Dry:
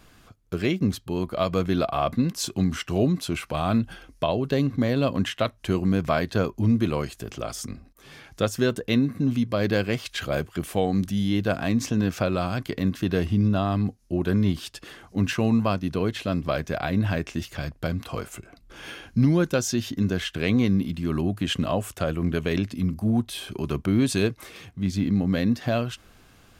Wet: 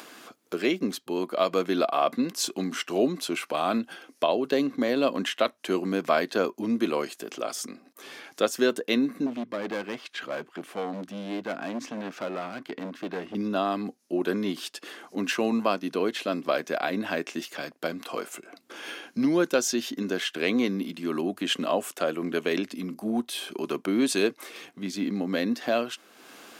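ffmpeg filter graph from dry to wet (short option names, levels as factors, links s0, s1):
-filter_complex "[0:a]asettb=1/sr,asplit=3[s0][s1][s2];[s0]atrim=end=9.264[s3];[s1]atrim=start=9.26:end=13.35,asetpts=PTS-STARTPTS,afade=t=in:d=0.004:c=qsin,afade=t=out:st=4.086:d=0.004:c=qsin,lowpass=f=1600:p=1,equalizer=f=500:w=0.87:g=-5,asoftclip=type=hard:threshold=0.0562[s4];[s2]atrim=start=13.346[s5];[s3][s4]acrossfade=d=0.004:c1=hsin:c2=qsin[s6];[s6][s5]acrossfade=d=0.004:c1=qsin:c2=hsin,highpass=f=260:w=0.5412,highpass=f=260:w=1.3066,acompressor=mode=upward:threshold=0.0112:ratio=2.5,volume=1.12"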